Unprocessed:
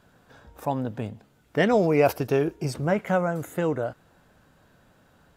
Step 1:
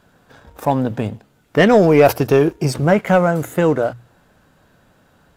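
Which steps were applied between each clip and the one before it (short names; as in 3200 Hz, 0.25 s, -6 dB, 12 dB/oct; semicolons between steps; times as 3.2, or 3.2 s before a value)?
sample leveller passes 1; notches 60/120 Hz; gain +6.5 dB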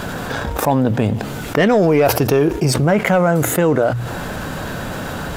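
fast leveller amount 70%; gain -4 dB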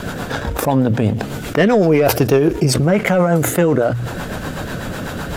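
rotary speaker horn 8 Hz; gain +2.5 dB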